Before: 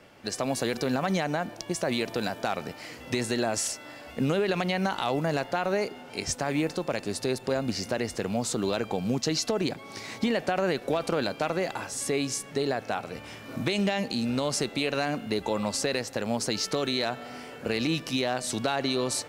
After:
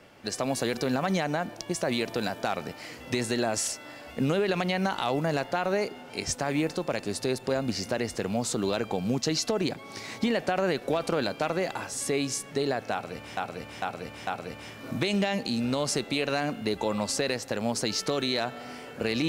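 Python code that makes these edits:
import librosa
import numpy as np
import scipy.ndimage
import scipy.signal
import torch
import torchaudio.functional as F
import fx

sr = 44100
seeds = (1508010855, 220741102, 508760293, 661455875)

y = fx.edit(x, sr, fx.repeat(start_s=12.92, length_s=0.45, count=4), tone=tone)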